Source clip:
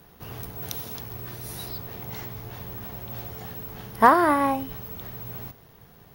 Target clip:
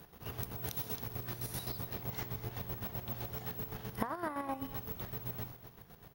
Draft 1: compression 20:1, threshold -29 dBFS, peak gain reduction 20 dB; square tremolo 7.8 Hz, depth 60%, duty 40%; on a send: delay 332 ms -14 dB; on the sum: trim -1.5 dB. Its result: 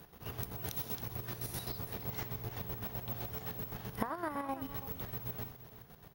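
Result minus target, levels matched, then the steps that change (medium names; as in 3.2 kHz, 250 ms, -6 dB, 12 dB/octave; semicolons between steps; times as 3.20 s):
echo 90 ms late
change: delay 242 ms -14 dB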